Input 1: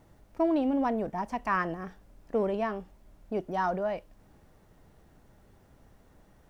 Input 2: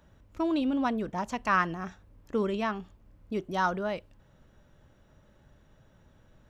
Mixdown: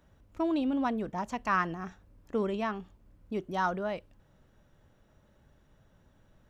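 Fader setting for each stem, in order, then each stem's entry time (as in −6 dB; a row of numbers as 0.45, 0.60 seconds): −13.5, −4.0 decibels; 0.00, 0.00 seconds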